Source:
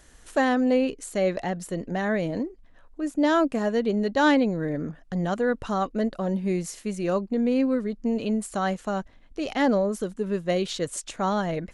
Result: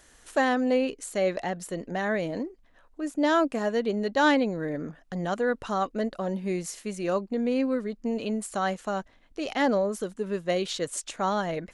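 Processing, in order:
low-shelf EQ 230 Hz −8.5 dB

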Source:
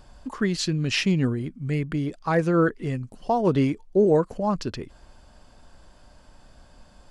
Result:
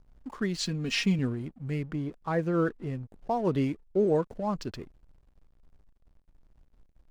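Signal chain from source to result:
0:00.60–0:01.19: comb filter 4.3 ms, depth 74%
0:01.82–0:03.31: high-shelf EQ 2,600 Hz −7 dB
slack as between gear wheels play −40.5 dBFS
level −6 dB

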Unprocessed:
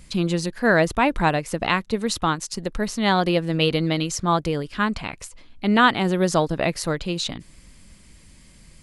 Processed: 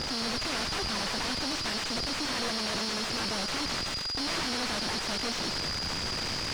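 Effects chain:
sign of each sample alone
high-pass filter 64 Hz 12 dB per octave
parametric band 4,400 Hz +13 dB 0.31 octaves
in parallel at +1 dB: output level in coarse steps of 11 dB
on the sum: brickwall limiter −11 dBFS, peak gain reduction 7 dB
steady tone 3,600 Hz −22 dBFS
harmonic generator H 5 −28 dB, 6 −31 dB, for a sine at −8.5 dBFS
wrap-around overflow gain 16 dB
high-frequency loss of the air 220 metres
feedback echo with a high-pass in the loop 137 ms, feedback 46%, high-pass 830 Hz, level −5.5 dB
wrong playback speed 33 rpm record played at 45 rpm
level −6 dB

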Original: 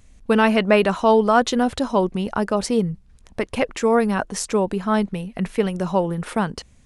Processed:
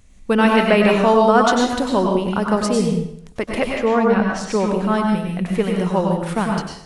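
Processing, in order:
0:03.67–0:04.52: low-pass filter 3,000 Hz → 5,000 Hz 12 dB per octave
dense smooth reverb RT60 0.67 s, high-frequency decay 0.95×, pre-delay 85 ms, DRR 0 dB

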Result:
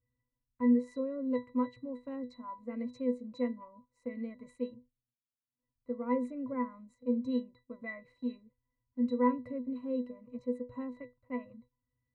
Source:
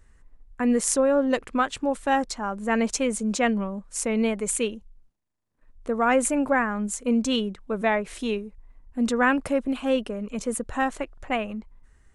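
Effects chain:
resonances in every octave B, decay 0.21 s
noise gate −59 dBFS, range −8 dB

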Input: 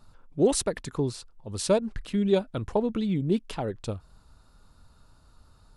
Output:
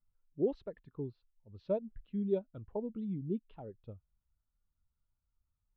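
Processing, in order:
low-pass filter 3,700 Hz 24 dB per octave
every bin expanded away from the loudest bin 1.5 to 1
level −9 dB

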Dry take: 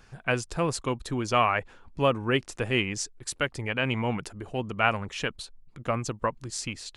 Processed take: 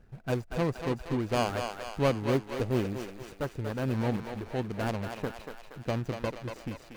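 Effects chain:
running median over 41 samples
feedback echo with a high-pass in the loop 236 ms, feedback 60%, high-pass 500 Hz, level −5 dB

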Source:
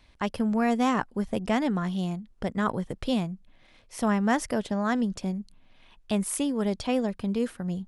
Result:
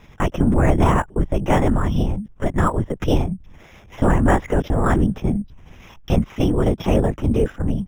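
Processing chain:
in parallel at −2 dB: downward compressor, threshold −34 dBFS, peak gain reduction 14.5 dB
on the sum: linear-prediction vocoder at 8 kHz whisper
decimation without filtering 5×
low-pass filter 2,500 Hz 6 dB per octave
level +7.5 dB

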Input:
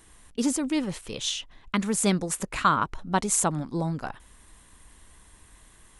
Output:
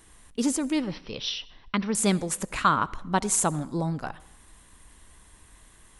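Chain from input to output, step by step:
0:00.80–0:01.95: Chebyshev low-pass filter 5,800 Hz, order 10
convolution reverb RT60 0.85 s, pre-delay 57 ms, DRR 20 dB

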